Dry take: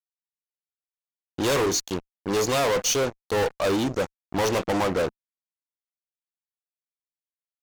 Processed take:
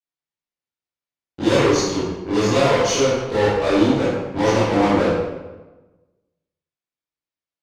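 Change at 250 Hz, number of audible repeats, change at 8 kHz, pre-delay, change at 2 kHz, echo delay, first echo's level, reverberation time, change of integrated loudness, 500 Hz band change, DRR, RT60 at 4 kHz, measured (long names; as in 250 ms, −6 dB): +9.5 dB, no echo audible, −0.5 dB, 14 ms, +5.0 dB, no echo audible, no echo audible, 1.2 s, +6.0 dB, +6.5 dB, −10.5 dB, 0.80 s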